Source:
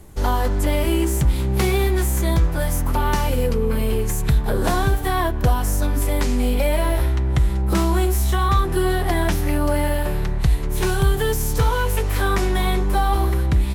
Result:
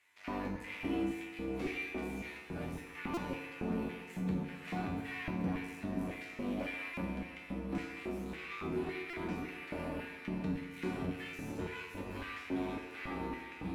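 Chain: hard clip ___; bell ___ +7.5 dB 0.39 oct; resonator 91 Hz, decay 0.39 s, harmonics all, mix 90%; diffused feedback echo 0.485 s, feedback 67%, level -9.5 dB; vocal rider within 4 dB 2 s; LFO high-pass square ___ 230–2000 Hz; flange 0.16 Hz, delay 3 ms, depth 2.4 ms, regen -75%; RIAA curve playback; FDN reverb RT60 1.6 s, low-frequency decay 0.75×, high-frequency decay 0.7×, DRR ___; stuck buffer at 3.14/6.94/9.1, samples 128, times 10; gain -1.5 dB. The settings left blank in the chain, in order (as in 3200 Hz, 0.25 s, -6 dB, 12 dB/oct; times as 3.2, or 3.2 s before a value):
-24 dBFS, 2500 Hz, 1.8 Hz, 5.5 dB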